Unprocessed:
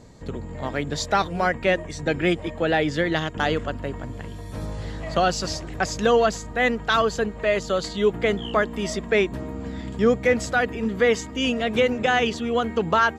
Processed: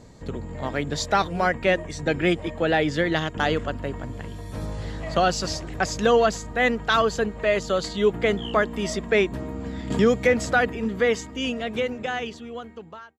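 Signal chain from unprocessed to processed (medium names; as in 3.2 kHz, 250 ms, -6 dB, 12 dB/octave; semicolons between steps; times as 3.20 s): fade out at the end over 2.68 s; 9.90–10.70 s: three bands compressed up and down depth 70%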